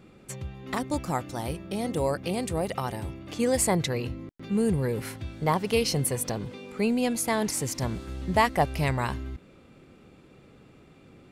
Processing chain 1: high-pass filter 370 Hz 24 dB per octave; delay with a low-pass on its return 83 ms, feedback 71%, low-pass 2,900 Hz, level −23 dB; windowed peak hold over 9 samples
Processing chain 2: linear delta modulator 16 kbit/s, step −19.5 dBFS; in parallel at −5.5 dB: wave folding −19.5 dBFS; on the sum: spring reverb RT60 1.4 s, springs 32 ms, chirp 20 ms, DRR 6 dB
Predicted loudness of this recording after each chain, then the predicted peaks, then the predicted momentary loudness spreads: −31.0, −21.5 LKFS; −10.0, −8.0 dBFS; 18, 2 LU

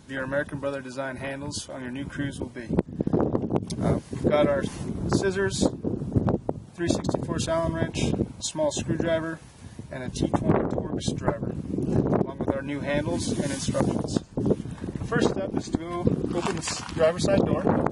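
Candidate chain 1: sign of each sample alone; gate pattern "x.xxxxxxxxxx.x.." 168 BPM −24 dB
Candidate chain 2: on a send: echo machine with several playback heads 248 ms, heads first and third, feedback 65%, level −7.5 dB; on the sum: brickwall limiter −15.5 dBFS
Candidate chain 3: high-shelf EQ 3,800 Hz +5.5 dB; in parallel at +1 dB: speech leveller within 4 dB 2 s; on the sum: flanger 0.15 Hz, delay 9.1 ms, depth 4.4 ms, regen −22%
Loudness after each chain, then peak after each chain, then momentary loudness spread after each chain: −27.5, −27.0, −23.5 LKFS; −26.5, −15.5, −3.5 dBFS; 5, 5, 8 LU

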